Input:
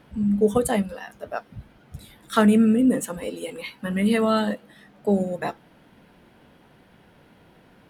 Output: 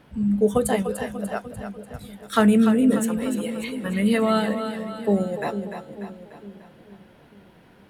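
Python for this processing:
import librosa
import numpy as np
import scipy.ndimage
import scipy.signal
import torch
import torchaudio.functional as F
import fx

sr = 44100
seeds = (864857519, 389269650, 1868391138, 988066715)

y = fx.echo_split(x, sr, split_hz=420.0, low_ms=449, high_ms=295, feedback_pct=52, wet_db=-8.5)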